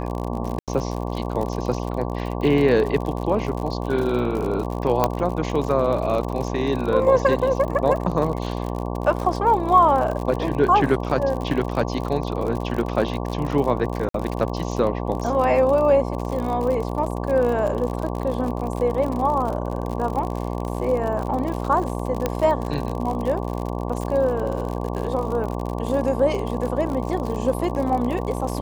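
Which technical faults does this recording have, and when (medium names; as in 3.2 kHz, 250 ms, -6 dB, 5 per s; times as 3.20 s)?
buzz 60 Hz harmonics 19 -27 dBFS
crackle 58 per s -27 dBFS
0.59–0.68 s: dropout 87 ms
5.04 s: pop -5 dBFS
14.09–14.14 s: dropout 53 ms
22.26 s: pop -8 dBFS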